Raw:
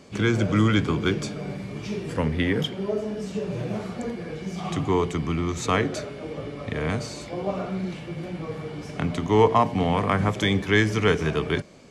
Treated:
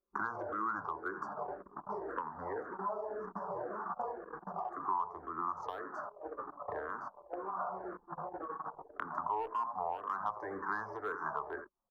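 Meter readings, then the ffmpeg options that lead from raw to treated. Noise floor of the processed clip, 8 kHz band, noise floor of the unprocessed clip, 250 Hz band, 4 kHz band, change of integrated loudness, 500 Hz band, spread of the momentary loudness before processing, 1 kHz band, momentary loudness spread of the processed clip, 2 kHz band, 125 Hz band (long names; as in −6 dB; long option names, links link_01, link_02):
−63 dBFS, below −30 dB, −38 dBFS, −24.0 dB, below −30 dB, −14.5 dB, −16.5 dB, 13 LU, −7.0 dB, 8 LU, −14.5 dB, −32.0 dB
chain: -filter_complex "[0:a]asplit=2[link_01][link_02];[link_02]aecho=0:1:85:0.178[link_03];[link_01][link_03]amix=inputs=2:normalize=0,agate=range=-9dB:threshold=-32dB:ratio=16:detection=peak,asuperstop=centerf=2900:order=8:qfactor=0.79,acrossover=split=270 3200:gain=0.1 1 0.1[link_04][link_05][link_06];[link_04][link_05][link_06]amix=inputs=3:normalize=0,acrossover=split=150|730[link_07][link_08][link_09];[link_09]asoftclip=type=hard:threshold=-25dB[link_10];[link_07][link_08][link_10]amix=inputs=3:normalize=0,acontrast=73,anlmdn=1,equalizer=frequency=125:width_type=o:width=1:gain=-11,equalizer=frequency=250:width_type=o:width=1:gain=-11,equalizer=frequency=500:width_type=o:width=1:gain=-9,equalizer=frequency=1000:width_type=o:width=1:gain=12,equalizer=frequency=2000:width_type=o:width=1:gain=-3,equalizer=frequency=4000:width_type=o:width=1:gain=-6,equalizer=frequency=8000:width_type=o:width=1:gain=-11,acompressor=threshold=-35dB:ratio=4,asplit=2[link_11][link_12];[link_12]afreqshift=-1.9[link_13];[link_11][link_13]amix=inputs=2:normalize=1,volume=1dB"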